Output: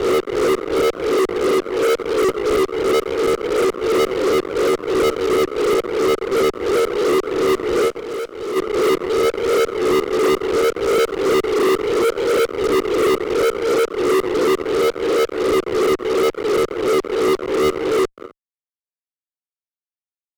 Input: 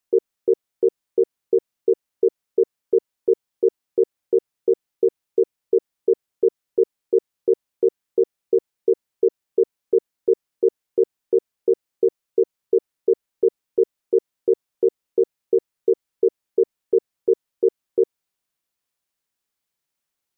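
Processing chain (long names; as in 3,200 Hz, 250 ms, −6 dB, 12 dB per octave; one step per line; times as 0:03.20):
peak hold with a rise ahead of every peak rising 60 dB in 0.71 s
single-tap delay 261 ms −16 dB
multi-voice chorus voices 6, 0.18 Hz, delay 15 ms, depth 1.9 ms
fuzz pedal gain 36 dB, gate −37 dBFS
0:07.88–0:08.56: tuned comb filter 210 Hz, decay 1 s, mix 40%
multiband upward and downward expander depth 100%
level −1 dB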